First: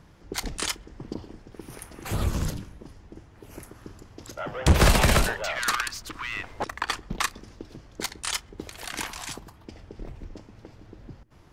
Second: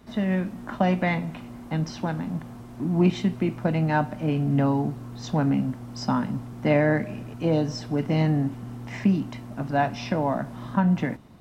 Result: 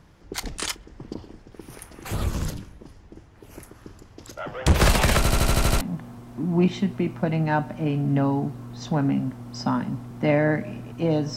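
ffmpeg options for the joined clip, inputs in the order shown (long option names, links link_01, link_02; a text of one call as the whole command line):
ffmpeg -i cue0.wav -i cue1.wav -filter_complex "[0:a]apad=whole_dur=11.36,atrim=end=11.36,asplit=8[link_01][link_02][link_03][link_04][link_05][link_06][link_07][link_08];[link_01]atrim=end=5.252[link_09];[link_02]atrim=start=5.168:end=5.252[link_10];[link_03]atrim=start=5.168:end=5.252[link_11];[link_04]atrim=start=5.168:end=5.252[link_12];[link_05]atrim=start=5.168:end=5.252[link_13];[link_06]atrim=start=5.168:end=5.252[link_14];[link_07]atrim=start=5.168:end=5.252[link_15];[link_08]atrim=start=5.168:end=5.252[link_16];[1:a]atrim=start=2.228:end=7.78[link_17];[link_09][link_10]acrossfade=duration=0.004:curve1=hsin:curve2=hsin[link_18];[link_18][link_11]acrossfade=duration=0.004:curve1=hsin:curve2=hsin[link_19];[link_19][link_12]acrossfade=duration=0.004:curve1=hsin:curve2=hsin[link_20];[link_20][link_13]acrossfade=duration=0.004:curve1=hsin:curve2=hsin[link_21];[link_21][link_14]acrossfade=duration=0.004:curve1=hsin:curve2=hsin[link_22];[link_22][link_15]acrossfade=duration=0.004:curve1=hsin:curve2=hsin[link_23];[link_23][link_16]acrossfade=duration=0.004:curve1=hsin:curve2=hsin[link_24];[link_24][link_17]acrossfade=duration=0.004:curve1=hsin:curve2=hsin" out.wav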